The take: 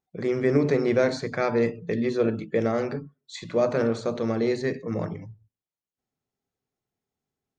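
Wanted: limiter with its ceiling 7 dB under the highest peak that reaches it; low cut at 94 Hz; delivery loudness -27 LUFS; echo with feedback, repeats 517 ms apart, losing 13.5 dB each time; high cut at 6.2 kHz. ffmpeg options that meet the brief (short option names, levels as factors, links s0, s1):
-af "highpass=94,lowpass=6200,alimiter=limit=0.141:level=0:latency=1,aecho=1:1:517|1034:0.211|0.0444,volume=1.12"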